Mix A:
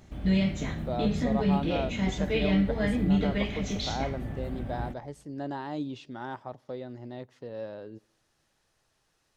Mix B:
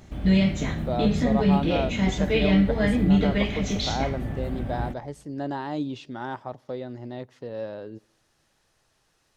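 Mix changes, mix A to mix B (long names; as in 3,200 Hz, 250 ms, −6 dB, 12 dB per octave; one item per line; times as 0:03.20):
speech +4.5 dB
background +5.0 dB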